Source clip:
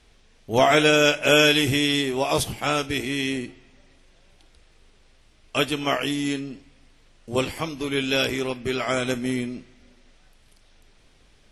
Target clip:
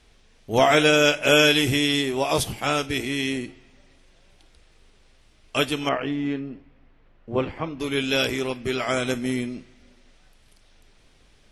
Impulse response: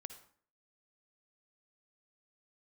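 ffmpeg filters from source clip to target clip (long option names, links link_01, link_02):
-filter_complex "[0:a]asettb=1/sr,asplit=3[link_01][link_02][link_03];[link_01]atrim=end=5.894[link_04];[link_02]atrim=start=5.89:end=7.8,asetpts=PTS-STARTPTS,afade=type=in:duration=0.004:curve=qsin,afade=type=out:start_time=1.906:duration=0.004:curve=qsin,lowpass=1800[link_05];[link_03]atrim=start=7.796[link_06];[link_04][link_05]acrossfade=duration=0.004:curve1=hsin:curve2=qsin[link_07];[link_07][link_06]acrossfade=duration=0.004:curve1=qsin:curve2=hsin"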